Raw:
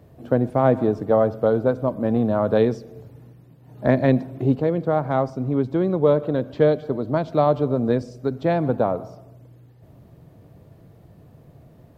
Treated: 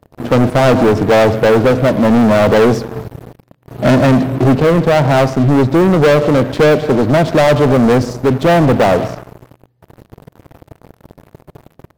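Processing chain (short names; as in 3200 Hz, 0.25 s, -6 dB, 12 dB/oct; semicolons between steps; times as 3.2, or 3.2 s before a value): sample leveller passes 5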